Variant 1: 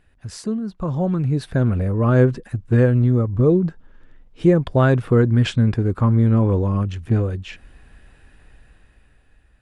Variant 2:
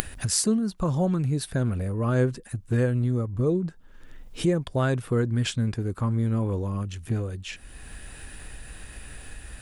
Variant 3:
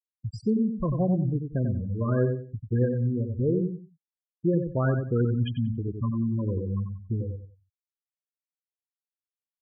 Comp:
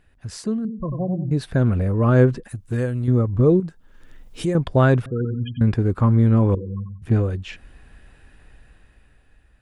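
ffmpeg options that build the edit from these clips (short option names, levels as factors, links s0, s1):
-filter_complex "[2:a]asplit=3[s0][s1][s2];[1:a]asplit=2[s3][s4];[0:a]asplit=6[s5][s6][s7][s8][s9][s10];[s5]atrim=end=0.652[s11];[s0]atrim=start=0.648:end=1.312[s12];[s6]atrim=start=1.308:end=2.482[s13];[s3]atrim=start=2.478:end=3.082[s14];[s7]atrim=start=3.078:end=3.602[s15];[s4]atrim=start=3.598:end=4.552[s16];[s8]atrim=start=4.548:end=5.062[s17];[s1]atrim=start=5.058:end=5.612[s18];[s9]atrim=start=5.608:end=6.552[s19];[s2]atrim=start=6.548:end=7.022[s20];[s10]atrim=start=7.018[s21];[s11][s12]acrossfade=d=0.004:c1=hsin:c2=hsin[s22];[s22][s13]acrossfade=d=0.004:c1=hsin:c2=hsin[s23];[s23][s14]acrossfade=d=0.004:c1=hsin:c2=hsin[s24];[s24][s15]acrossfade=d=0.004:c1=hsin:c2=hsin[s25];[s25][s16]acrossfade=d=0.004:c1=hsin:c2=hsin[s26];[s26][s17]acrossfade=d=0.004:c1=hsin:c2=hsin[s27];[s27][s18]acrossfade=d=0.004:c1=hsin:c2=hsin[s28];[s28][s19]acrossfade=d=0.004:c1=hsin:c2=hsin[s29];[s29][s20]acrossfade=d=0.004:c1=hsin:c2=hsin[s30];[s30][s21]acrossfade=d=0.004:c1=hsin:c2=hsin"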